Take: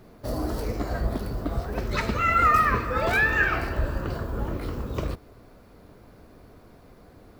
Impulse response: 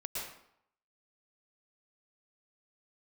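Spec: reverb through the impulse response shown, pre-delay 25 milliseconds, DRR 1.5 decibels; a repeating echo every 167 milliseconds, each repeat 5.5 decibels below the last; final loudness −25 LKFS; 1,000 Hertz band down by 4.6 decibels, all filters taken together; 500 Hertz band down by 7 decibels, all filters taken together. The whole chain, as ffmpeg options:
-filter_complex "[0:a]equalizer=frequency=500:width_type=o:gain=-7.5,equalizer=frequency=1000:width_type=o:gain=-5.5,aecho=1:1:167|334|501|668|835|1002|1169:0.531|0.281|0.149|0.079|0.0419|0.0222|0.0118,asplit=2[link_01][link_02];[1:a]atrim=start_sample=2205,adelay=25[link_03];[link_02][link_03]afir=irnorm=-1:irlink=0,volume=-3dB[link_04];[link_01][link_04]amix=inputs=2:normalize=0,volume=-0.5dB"

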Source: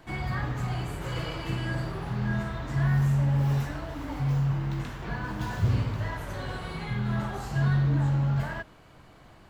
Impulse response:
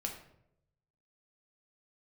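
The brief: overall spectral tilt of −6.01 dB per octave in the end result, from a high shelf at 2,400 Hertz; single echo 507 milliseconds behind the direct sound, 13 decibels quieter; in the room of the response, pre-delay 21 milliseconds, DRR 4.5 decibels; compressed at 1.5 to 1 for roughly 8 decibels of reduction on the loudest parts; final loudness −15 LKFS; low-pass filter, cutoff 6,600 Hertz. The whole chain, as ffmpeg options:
-filter_complex "[0:a]lowpass=6600,highshelf=frequency=2400:gain=8,acompressor=threshold=-43dB:ratio=1.5,aecho=1:1:507:0.224,asplit=2[link_01][link_02];[1:a]atrim=start_sample=2205,adelay=21[link_03];[link_02][link_03]afir=irnorm=-1:irlink=0,volume=-5dB[link_04];[link_01][link_04]amix=inputs=2:normalize=0,volume=18dB"

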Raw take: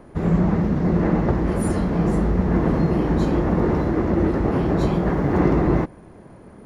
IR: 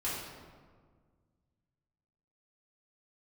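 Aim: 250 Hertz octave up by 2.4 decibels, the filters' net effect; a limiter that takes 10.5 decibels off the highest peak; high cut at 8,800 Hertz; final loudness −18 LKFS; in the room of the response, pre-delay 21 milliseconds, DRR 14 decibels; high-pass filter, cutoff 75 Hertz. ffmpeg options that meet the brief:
-filter_complex "[0:a]highpass=75,lowpass=8800,equalizer=frequency=250:width_type=o:gain=3.5,alimiter=limit=-13.5dB:level=0:latency=1,asplit=2[link_01][link_02];[1:a]atrim=start_sample=2205,adelay=21[link_03];[link_02][link_03]afir=irnorm=-1:irlink=0,volume=-19dB[link_04];[link_01][link_04]amix=inputs=2:normalize=0,volume=4dB"

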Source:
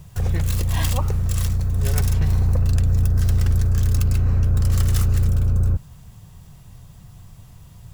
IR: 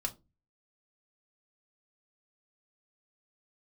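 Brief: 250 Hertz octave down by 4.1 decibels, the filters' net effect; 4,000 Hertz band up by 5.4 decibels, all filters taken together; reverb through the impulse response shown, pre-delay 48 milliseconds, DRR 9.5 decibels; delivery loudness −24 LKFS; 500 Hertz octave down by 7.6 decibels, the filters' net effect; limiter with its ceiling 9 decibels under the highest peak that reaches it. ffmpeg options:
-filter_complex "[0:a]equalizer=frequency=250:width_type=o:gain=-6.5,equalizer=frequency=500:width_type=o:gain=-7.5,equalizer=frequency=4000:width_type=o:gain=7,alimiter=limit=-15dB:level=0:latency=1,asplit=2[link_01][link_02];[1:a]atrim=start_sample=2205,adelay=48[link_03];[link_02][link_03]afir=irnorm=-1:irlink=0,volume=-11dB[link_04];[link_01][link_04]amix=inputs=2:normalize=0,volume=2dB"

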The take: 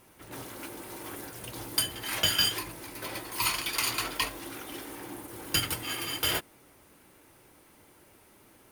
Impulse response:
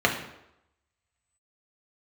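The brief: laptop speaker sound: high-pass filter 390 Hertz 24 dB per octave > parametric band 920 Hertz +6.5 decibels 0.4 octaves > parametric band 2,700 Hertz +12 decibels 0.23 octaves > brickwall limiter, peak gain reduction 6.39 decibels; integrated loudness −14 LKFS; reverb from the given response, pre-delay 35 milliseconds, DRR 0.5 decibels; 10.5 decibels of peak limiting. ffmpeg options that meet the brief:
-filter_complex "[0:a]alimiter=limit=-22.5dB:level=0:latency=1,asplit=2[link_01][link_02];[1:a]atrim=start_sample=2205,adelay=35[link_03];[link_02][link_03]afir=irnorm=-1:irlink=0,volume=-17dB[link_04];[link_01][link_04]amix=inputs=2:normalize=0,highpass=frequency=390:width=0.5412,highpass=frequency=390:width=1.3066,equalizer=frequency=920:width_type=o:width=0.4:gain=6.5,equalizer=frequency=2700:width_type=o:width=0.23:gain=12,volume=19dB,alimiter=limit=-3.5dB:level=0:latency=1"

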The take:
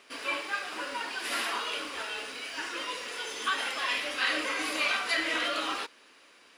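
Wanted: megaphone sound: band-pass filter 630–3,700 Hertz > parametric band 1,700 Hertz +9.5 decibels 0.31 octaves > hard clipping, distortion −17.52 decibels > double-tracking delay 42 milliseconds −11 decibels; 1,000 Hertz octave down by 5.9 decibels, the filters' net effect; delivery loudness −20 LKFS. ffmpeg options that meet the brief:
ffmpeg -i in.wav -filter_complex "[0:a]highpass=630,lowpass=3700,equalizer=frequency=1000:width_type=o:gain=-8.5,equalizer=frequency=1700:width_type=o:width=0.31:gain=9.5,asoftclip=type=hard:threshold=-24dB,asplit=2[link_01][link_02];[link_02]adelay=42,volume=-11dB[link_03];[link_01][link_03]amix=inputs=2:normalize=0,volume=11.5dB" out.wav

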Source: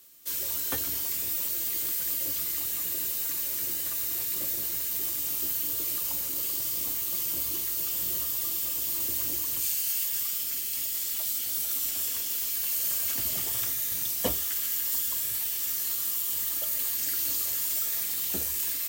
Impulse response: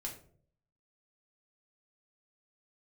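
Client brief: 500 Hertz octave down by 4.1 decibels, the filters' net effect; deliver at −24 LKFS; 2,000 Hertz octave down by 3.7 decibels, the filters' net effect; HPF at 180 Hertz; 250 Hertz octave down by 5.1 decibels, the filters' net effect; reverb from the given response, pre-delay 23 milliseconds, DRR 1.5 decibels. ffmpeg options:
-filter_complex "[0:a]highpass=180,equalizer=frequency=250:width_type=o:gain=-4,equalizer=frequency=500:width_type=o:gain=-3.5,equalizer=frequency=2000:width_type=o:gain=-4.5,asplit=2[link_01][link_02];[1:a]atrim=start_sample=2205,adelay=23[link_03];[link_02][link_03]afir=irnorm=-1:irlink=0,volume=0dB[link_04];[link_01][link_04]amix=inputs=2:normalize=0,volume=0.5dB"

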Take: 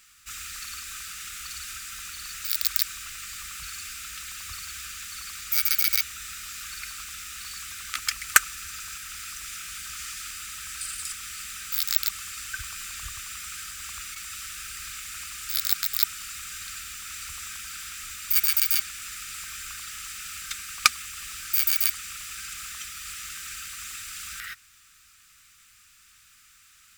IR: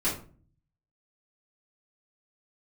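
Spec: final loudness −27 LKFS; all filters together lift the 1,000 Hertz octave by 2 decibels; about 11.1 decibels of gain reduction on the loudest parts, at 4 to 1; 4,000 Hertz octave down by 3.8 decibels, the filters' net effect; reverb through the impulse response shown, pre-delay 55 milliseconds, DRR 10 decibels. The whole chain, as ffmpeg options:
-filter_complex "[0:a]equalizer=frequency=1000:width_type=o:gain=3.5,equalizer=frequency=4000:width_type=o:gain=-5,acompressor=threshold=-28dB:ratio=4,asplit=2[link_01][link_02];[1:a]atrim=start_sample=2205,adelay=55[link_03];[link_02][link_03]afir=irnorm=-1:irlink=0,volume=-19dB[link_04];[link_01][link_04]amix=inputs=2:normalize=0,volume=7dB"

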